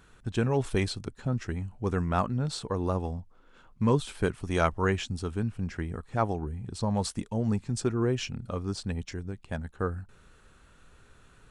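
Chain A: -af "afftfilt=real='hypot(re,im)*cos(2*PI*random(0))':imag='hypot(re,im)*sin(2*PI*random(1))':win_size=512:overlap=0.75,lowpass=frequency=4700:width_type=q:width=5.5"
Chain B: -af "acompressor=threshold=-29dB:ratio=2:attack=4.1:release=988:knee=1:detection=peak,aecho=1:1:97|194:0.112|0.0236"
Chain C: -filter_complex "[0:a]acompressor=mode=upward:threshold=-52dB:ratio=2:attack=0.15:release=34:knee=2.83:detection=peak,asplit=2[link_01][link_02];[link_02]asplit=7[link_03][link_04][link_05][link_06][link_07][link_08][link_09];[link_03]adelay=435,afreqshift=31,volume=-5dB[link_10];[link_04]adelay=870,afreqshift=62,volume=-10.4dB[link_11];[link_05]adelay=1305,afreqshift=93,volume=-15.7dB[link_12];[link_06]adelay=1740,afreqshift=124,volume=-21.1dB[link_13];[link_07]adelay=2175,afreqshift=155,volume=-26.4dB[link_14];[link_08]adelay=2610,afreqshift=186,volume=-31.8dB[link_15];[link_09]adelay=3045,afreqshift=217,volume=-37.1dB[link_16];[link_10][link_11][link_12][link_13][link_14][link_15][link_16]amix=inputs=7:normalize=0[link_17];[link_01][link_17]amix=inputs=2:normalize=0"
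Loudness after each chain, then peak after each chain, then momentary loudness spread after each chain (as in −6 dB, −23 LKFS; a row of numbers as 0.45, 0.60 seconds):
−36.0, −35.5, −29.5 LKFS; −17.0, −17.5, −9.5 dBFS; 9, 6, 11 LU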